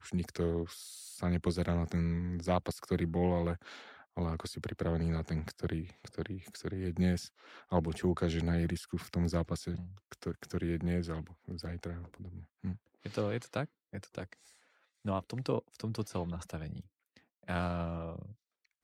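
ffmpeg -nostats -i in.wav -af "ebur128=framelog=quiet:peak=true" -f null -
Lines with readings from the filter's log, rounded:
Integrated loudness:
  I:         -36.4 LUFS
  Threshold: -46.9 LUFS
Loudness range:
  LRA:         6.0 LU
  Threshold: -56.9 LUFS
  LRA low:   -40.3 LUFS
  LRA high:  -34.3 LUFS
True peak:
  Peak:      -17.2 dBFS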